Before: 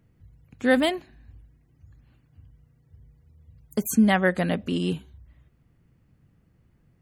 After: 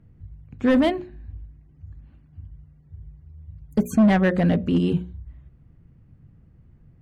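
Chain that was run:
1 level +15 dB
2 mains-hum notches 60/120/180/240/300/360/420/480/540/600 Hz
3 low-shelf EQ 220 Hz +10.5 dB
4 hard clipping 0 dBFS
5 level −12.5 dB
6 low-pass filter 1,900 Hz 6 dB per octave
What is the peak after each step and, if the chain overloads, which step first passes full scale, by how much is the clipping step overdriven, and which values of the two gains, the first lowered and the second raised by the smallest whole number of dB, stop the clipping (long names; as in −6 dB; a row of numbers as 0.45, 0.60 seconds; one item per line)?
+7.0, +6.5, +10.0, 0.0, −12.5, −12.5 dBFS
step 1, 10.0 dB
step 1 +5 dB, step 5 −2.5 dB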